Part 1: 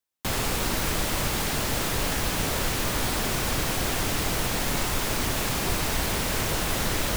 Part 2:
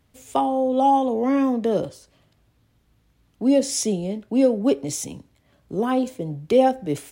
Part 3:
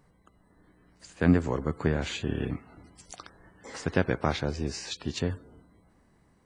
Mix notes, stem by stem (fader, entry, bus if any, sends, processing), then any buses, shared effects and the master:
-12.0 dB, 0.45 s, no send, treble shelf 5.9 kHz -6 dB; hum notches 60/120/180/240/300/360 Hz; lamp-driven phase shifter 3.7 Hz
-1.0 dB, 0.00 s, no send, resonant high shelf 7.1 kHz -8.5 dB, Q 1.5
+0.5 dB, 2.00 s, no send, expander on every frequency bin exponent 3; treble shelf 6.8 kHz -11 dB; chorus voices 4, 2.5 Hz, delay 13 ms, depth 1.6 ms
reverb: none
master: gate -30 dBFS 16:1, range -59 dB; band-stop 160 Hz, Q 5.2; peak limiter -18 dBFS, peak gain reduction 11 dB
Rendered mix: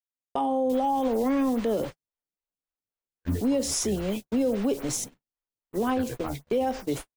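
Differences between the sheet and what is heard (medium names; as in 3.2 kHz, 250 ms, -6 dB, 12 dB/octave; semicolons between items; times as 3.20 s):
stem 1: missing treble shelf 5.9 kHz -6 dB; stem 2: missing resonant high shelf 7.1 kHz -8.5 dB, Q 1.5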